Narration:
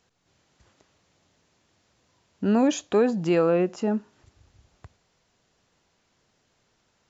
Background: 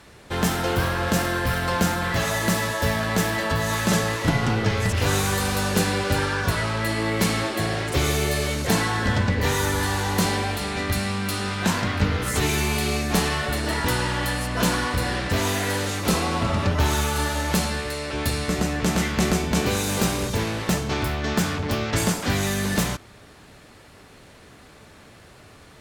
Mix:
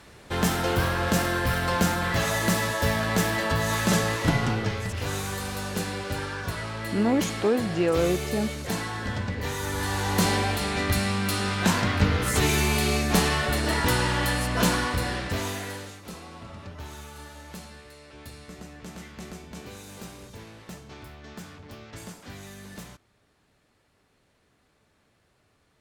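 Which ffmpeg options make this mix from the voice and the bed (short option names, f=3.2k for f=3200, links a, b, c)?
-filter_complex "[0:a]adelay=4500,volume=-2.5dB[a];[1:a]volume=7dB,afade=t=out:st=4.32:d=0.52:silence=0.446684,afade=t=in:st=9.6:d=0.72:silence=0.375837,afade=t=out:st=14.52:d=1.49:silence=0.112202[b];[a][b]amix=inputs=2:normalize=0"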